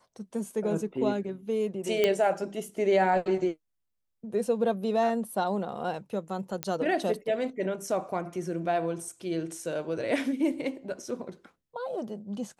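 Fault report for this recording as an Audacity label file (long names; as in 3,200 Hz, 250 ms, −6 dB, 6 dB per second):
2.040000	2.040000	click −11 dBFS
6.630000	6.630000	click −13 dBFS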